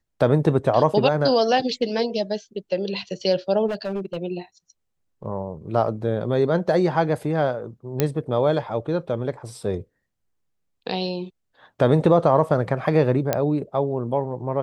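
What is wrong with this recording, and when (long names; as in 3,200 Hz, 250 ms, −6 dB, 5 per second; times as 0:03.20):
0:03.67–0:04.17: clipping −22.5 dBFS
0:08.00: click −5 dBFS
0:13.33: click −6 dBFS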